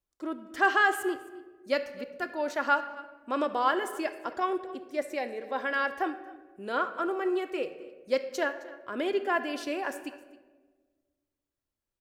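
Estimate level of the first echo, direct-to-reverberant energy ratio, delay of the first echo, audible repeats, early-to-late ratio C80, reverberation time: -20.5 dB, 7.5 dB, 0.264 s, 1, 13.0 dB, 1.3 s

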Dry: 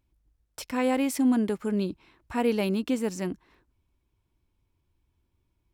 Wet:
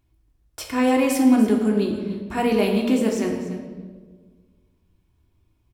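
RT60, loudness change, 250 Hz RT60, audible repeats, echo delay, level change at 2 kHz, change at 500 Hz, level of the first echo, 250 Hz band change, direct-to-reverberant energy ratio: 1.5 s, +6.5 dB, 1.9 s, 1, 0.291 s, +6.5 dB, +7.0 dB, -14.5 dB, +7.0 dB, -0.5 dB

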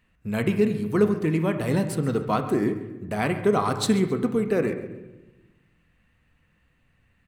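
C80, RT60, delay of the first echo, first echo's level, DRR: 10.5 dB, 1.1 s, 0.135 s, -16.5 dB, 6.5 dB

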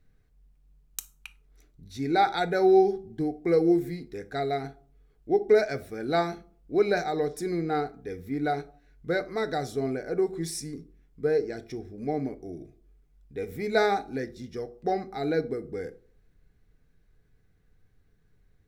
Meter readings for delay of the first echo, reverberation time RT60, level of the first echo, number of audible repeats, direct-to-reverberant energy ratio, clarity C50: none, 0.50 s, none, none, 9.0 dB, 17.5 dB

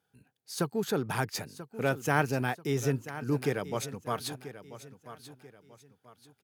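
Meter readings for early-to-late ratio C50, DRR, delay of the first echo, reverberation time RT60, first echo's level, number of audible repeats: none, none, 0.987 s, none, -14.0 dB, 3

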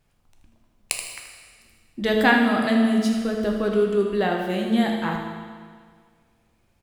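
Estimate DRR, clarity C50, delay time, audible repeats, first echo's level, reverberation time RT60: 0.5 dB, 2.5 dB, 79 ms, 1, -9.0 dB, 1.8 s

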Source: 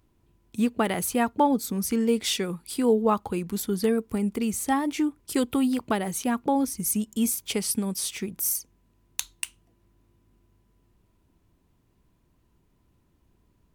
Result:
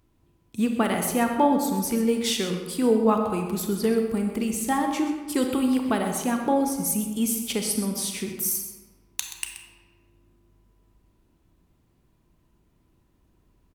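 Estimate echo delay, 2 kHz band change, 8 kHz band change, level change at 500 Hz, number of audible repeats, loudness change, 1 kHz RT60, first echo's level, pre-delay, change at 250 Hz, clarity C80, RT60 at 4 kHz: 0.128 s, +1.5 dB, +1.0 dB, +2.0 dB, 1, +1.5 dB, 1.4 s, -12.5 dB, 29 ms, +1.5 dB, 6.0 dB, 0.85 s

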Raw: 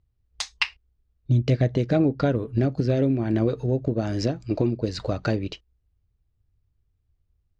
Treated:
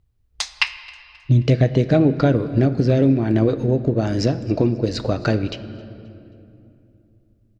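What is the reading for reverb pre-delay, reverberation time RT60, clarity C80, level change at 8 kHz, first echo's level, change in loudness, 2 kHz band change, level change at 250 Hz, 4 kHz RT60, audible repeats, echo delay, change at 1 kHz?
4 ms, 2.7 s, 13.5 dB, n/a, -24.0 dB, +5.5 dB, +5.5 dB, +5.5 dB, 1.7 s, 2, 0.266 s, +5.0 dB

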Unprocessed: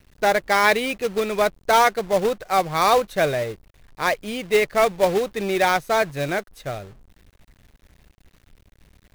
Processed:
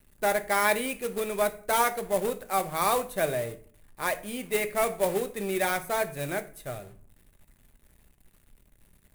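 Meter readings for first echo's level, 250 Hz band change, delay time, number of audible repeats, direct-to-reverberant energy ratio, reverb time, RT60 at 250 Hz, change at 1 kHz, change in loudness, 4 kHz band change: none, -6.5 dB, none, none, 8.0 dB, 0.45 s, 0.70 s, -8.0 dB, -7.0 dB, -9.0 dB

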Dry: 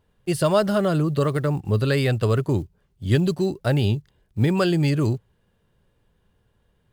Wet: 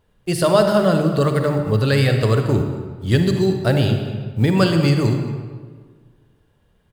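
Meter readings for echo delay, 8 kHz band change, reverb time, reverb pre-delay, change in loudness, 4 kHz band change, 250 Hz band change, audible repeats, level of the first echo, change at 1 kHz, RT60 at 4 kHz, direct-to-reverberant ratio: 0.226 s, +4.5 dB, 1.6 s, 40 ms, +4.0 dB, +5.5 dB, +4.0 dB, 1, -19.0 dB, +5.0 dB, 1.0 s, 5.0 dB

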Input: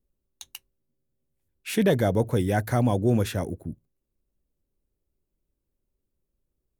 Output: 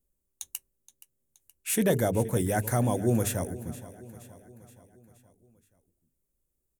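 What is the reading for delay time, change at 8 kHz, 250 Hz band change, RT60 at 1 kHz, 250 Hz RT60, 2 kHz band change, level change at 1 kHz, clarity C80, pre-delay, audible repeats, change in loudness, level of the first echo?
0.473 s, +7.5 dB, -3.5 dB, none, none, -3.0 dB, -2.5 dB, none, none, 4, -3.5 dB, -17.0 dB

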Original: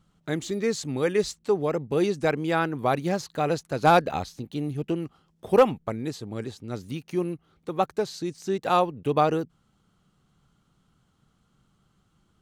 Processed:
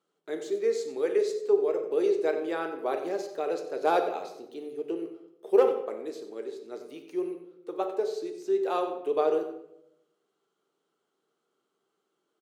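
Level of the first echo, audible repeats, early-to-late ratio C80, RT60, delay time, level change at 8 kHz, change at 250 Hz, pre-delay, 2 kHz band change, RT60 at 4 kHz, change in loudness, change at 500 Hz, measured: -13.0 dB, 1, 9.5 dB, 0.80 s, 92 ms, n/a, -7.0 dB, 3 ms, -8.5 dB, 0.50 s, -3.0 dB, -0.5 dB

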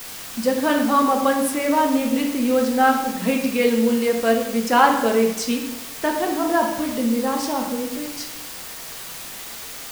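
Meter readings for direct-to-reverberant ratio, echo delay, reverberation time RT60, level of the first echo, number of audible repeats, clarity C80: 1.0 dB, none, 0.90 s, none, none, 8.0 dB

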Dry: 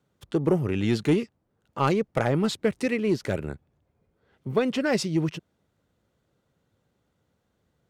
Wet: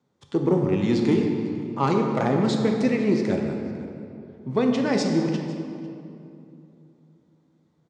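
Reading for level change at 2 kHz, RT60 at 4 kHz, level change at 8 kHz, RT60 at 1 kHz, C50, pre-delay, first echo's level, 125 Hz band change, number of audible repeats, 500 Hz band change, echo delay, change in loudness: -1.0 dB, 1.6 s, -1.0 dB, 2.5 s, 3.5 dB, 10 ms, -21.0 dB, +1.5 dB, 1, +2.5 dB, 0.5 s, +2.5 dB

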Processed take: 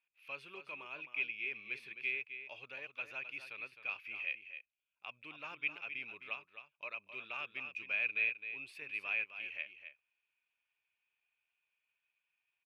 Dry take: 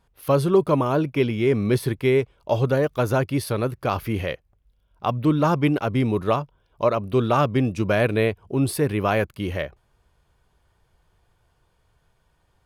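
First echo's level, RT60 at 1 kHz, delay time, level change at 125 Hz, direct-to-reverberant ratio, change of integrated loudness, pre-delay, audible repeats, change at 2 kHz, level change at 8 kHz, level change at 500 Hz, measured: -10.0 dB, none, 0.261 s, under -40 dB, none, -17.5 dB, none, 1, -5.5 dB, under -30 dB, -34.5 dB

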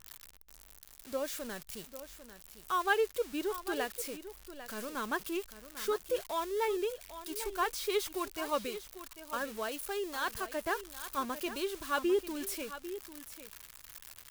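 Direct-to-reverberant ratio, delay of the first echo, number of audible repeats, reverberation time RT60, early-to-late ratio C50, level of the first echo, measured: none, 0.797 s, 1, none, none, -12.5 dB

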